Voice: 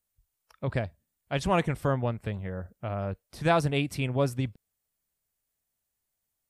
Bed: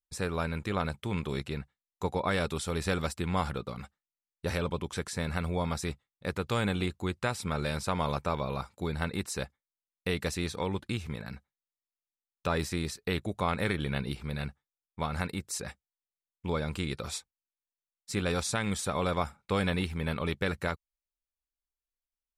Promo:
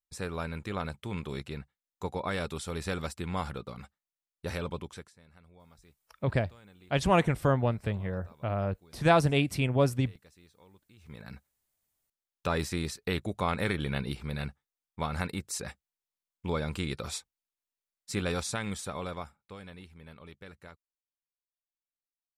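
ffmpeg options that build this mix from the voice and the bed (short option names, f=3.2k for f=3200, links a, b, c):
-filter_complex "[0:a]adelay=5600,volume=1.5dB[a];[1:a]volume=23dB,afade=t=out:st=4.77:d=0.36:silence=0.0707946,afade=t=in:st=10.96:d=0.54:silence=0.0473151,afade=t=out:st=18.07:d=1.5:silence=0.125893[b];[a][b]amix=inputs=2:normalize=0"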